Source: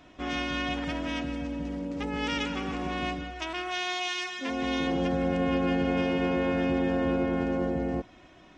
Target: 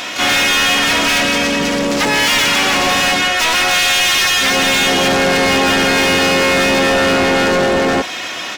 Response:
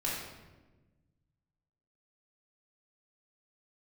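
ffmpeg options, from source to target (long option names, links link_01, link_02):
-filter_complex "[0:a]asplit=3[link_01][link_02][link_03];[link_02]asetrate=33038,aresample=44100,atempo=1.33484,volume=-4dB[link_04];[link_03]asetrate=88200,aresample=44100,atempo=0.5,volume=-16dB[link_05];[link_01][link_04][link_05]amix=inputs=3:normalize=0,crystalizer=i=8:c=0,asplit=2[link_06][link_07];[link_07]highpass=frequency=720:poles=1,volume=35dB,asoftclip=type=tanh:threshold=-2.5dB[link_08];[link_06][link_08]amix=inputs=2:normalize=0,lowpass=frequency=5100:poles=1,volume=-6dB,volume=-3dB"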